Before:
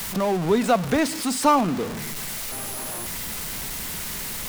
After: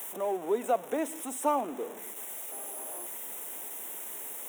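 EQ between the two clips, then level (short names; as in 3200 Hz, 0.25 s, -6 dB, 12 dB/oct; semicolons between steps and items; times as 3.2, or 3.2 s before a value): HPF 330 Hz 24 dB/oct; Butterworth band-stop 4600 Hz, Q 2.1; band shelf 2800 Hz -8.5 dB 2.9 oct; -6.5 dB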